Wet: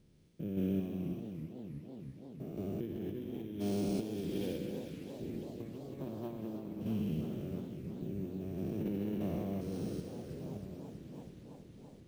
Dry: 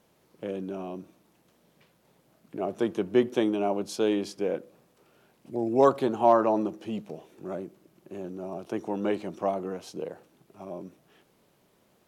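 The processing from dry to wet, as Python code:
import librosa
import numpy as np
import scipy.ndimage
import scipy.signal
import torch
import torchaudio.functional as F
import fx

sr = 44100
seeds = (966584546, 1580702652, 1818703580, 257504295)

p1 = fx.spec_steps(x, sr, hold_ms=400)
p2 = fx.tone_stack(p1, sr, knobs='10-0-1')
p3 = p2 + fx.echo_wet_highpass(p2, sr, ms=64, feedback_pct=79, hz=1700.0, wet_db=-4.5, dry=0)
p4 = np.repeat(scipy.signal.resample_poly(p3, 1, 3), 3)[:len(p3)]
p5 = fx.low_shelf(p4, sr, hz=230.0, db=5.0)
p6 = fx.hum_notches(p5, sr, base_hz=60, count=5)
p7 = fx.over_compress(p6, sr, threshold_db=-52.0, ratio=-0.5)
p8 = fx.tremolo_random(p7, sr, seeds[0], hz=3.5, depth_pct=55)
p9 = fx.echo_warbled(p8, sr, ms=326, feedback_pct=79, rate_hz=2.8, cents=185, wet_db=-10.5)
y = F.gain(torch.from_numpy(p9), 18.0).numpy()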